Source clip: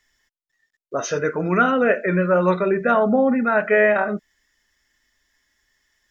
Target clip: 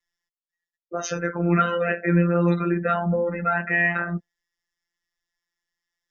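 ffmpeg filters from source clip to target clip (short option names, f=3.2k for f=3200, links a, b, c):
-filter_complex "[0:a]afftdn=nr=17:nf=-40,acrossover=split=120|380|1400[a][b][c][d];[c]acompressor=threshold=-28dB:ratio=8[e];[a][b][e][d]amix=inputs=4:normalize=0,afftfilt=real='hypot(re,im)*cos(PI*b)':imag='0':win_size=1024:overlap=0.75,volume=3dB"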